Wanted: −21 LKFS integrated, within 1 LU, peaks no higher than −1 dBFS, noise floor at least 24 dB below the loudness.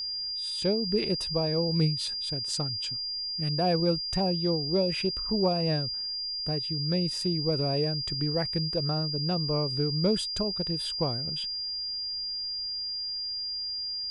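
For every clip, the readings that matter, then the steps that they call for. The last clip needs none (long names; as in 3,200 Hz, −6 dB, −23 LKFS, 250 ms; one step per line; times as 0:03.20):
interfering tone 4,800 Hz; level of the tone −31 dBFS; integrated loudness −28.0 LKFS; sample peak −14.0 dBFS; target loudness −21.0 LKFS
→ notch filter 4,800 Hz, Q 30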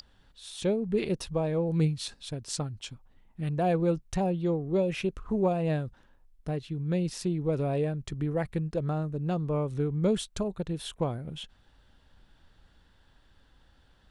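interfering tone none found; integrated loudness −30.5 LKFS; sample peak −15.0 dBFS; target loudness −21.0 LKFS
→ level +9.5 dB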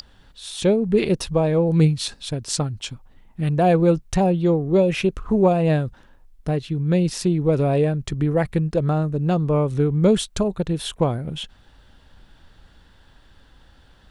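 integrated loudness −21.0 LKFS; sample peak −5.5 dBFS; background noise floor −53 dBFS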